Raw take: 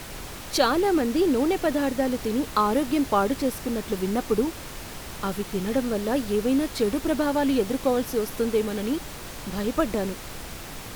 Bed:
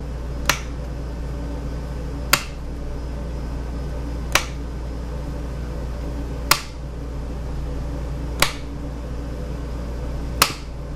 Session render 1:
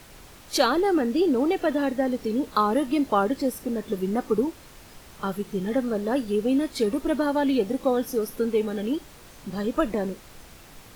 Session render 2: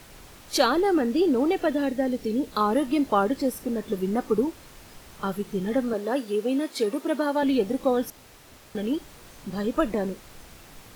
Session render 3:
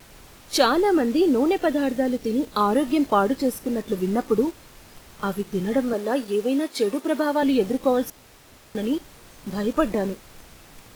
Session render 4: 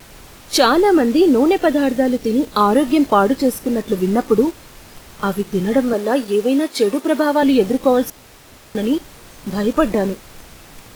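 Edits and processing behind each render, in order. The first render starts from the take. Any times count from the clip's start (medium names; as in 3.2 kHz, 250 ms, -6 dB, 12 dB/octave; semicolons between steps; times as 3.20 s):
noise print and reduce 10 dB
1.68–2.61 s: peaking EQ 1.1 kHz -6.5 dB 0.98 oct; 5.93–7.43 s: high-pass 280 Hz; 8.10–8.75 s: room tone
in parallel at -9.5 dB: word length cut 6-bit, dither none; on the sum: vibrato 1.4 Hz 34 cents
trim +6.5 dB; peak limiter -2 dBFS, peak gain reduction 3 dB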